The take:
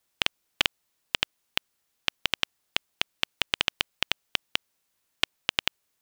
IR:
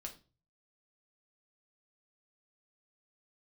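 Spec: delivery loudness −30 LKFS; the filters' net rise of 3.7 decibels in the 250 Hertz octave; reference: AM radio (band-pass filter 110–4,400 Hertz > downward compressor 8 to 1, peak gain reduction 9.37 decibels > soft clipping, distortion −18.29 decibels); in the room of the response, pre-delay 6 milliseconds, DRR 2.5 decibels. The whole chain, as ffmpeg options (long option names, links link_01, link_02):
-filter_complex "[0:a]equalizer=frequency=250:width_type=o:gain=5,asplit=2[link_01][link_02];[1:a]atrim=start_sample=2205,adelay=6[link_03];[link_02][link_03]afir=irnorm=-1:irlink=0,volume=1dB[link_04];[link_01][link_04]amix=inputs=2:normalize=0,highpass=110,lowpass=4400,acompressor=threshold=-26dB:ratio=8,asoftclip=threshold=-7.5dB,volume=5.5dB"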